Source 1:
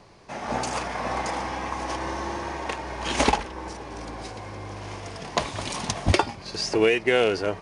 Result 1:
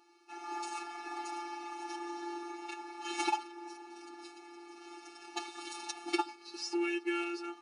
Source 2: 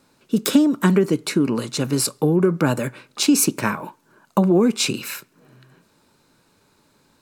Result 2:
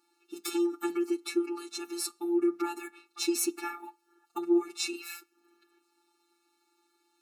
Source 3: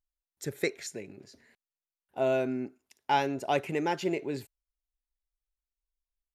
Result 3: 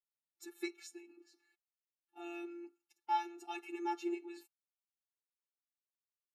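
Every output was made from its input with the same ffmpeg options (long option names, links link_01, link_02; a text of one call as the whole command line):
ffmpeg -i in.wav -af "afftfilt=real='hypot(re,im)*cos(PI*b)':imag='0':win_size=1024:overlap=0.75,equalizer=frequency=520:width_type=o:width=0.26:gain=-8,afftfilt=real='re*eq(mod(floor(b*sr/1024/230),2),1)':imag='im*eq(mod(floor(b*sr/1024/230),2),1)':win_size=1024:overlap=0.75,volume=-5dB" out.wav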